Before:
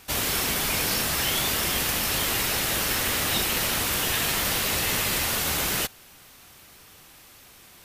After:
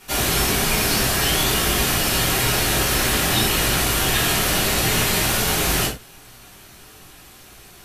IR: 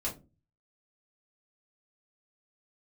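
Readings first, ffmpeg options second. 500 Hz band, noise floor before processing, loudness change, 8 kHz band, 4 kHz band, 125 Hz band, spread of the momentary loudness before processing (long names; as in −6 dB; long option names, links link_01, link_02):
+8.0 dB, −51 dBFS, +5.0 dB, +5.0 dB, +5.0 dB, +10.0 dB, 1 LU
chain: -filter_complex "[1:a]atrim=start_sample=2205,atrim=end_sample=3528,asetrate=28224,aresample=44100[link_01];[0:a][link_01]afir=irnorm=-1:irlink=0"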